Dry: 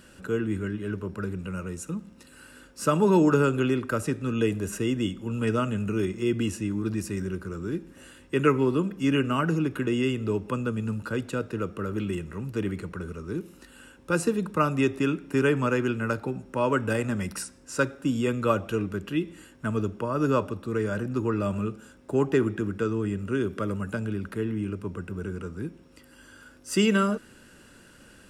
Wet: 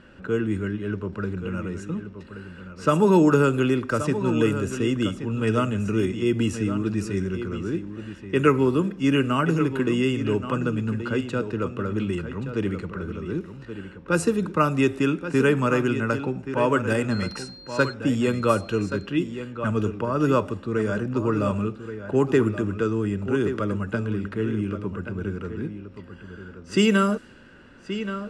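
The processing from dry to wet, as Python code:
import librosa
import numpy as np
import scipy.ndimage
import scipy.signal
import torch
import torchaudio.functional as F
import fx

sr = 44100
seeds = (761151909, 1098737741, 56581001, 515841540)

y = fx.dmg_tone(x, sr, hz=4200.0, level_db=-41.0, at=(17.1, 17.92), fade=0.02)
y = y + 10.0 ** (-10.5 / 20.0) * np.pad(y, (int(1127 * sr / 1000.0), 0))[:len(y)]
y = fx.env_lowpass(y, sr, base_hz=2500.0, full_db=-19.0)
y = F.gain(torch.from_numpy(y), 3.0).numpy()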